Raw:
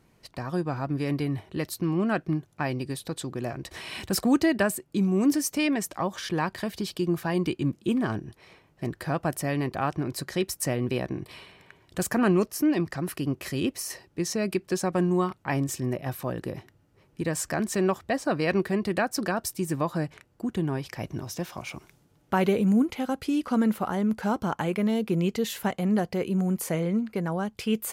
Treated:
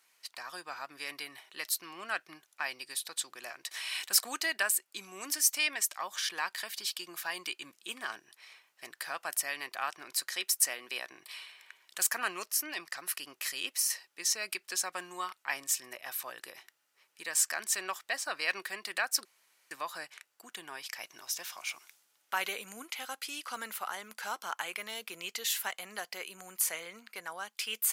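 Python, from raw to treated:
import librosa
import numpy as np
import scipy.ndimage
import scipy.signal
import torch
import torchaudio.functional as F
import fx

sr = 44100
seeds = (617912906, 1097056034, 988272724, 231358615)

y = fx.highpass(x, sr, hz=180.0, slope=12, at=(10.11, 11.11))
y = fx.edit(y, sr, fx.room_tone_fill(start_s=19.25, length_s=0.46), tone=tone)
y = scipy.signal.sosfilt(scipy.signal.butter(2, 1400.0, 'highpass', fs=sr, output='sos'), y)
y = fx.high_shelf(y, sr, hz=4200.0, db=6.0)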